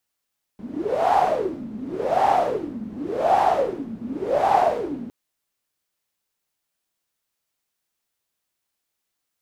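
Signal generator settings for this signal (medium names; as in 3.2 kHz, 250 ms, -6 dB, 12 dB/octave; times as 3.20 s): wind-like swept noise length 4.51 s, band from 220 Hz, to 800 Hz, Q 9.6, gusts 4, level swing 16 dB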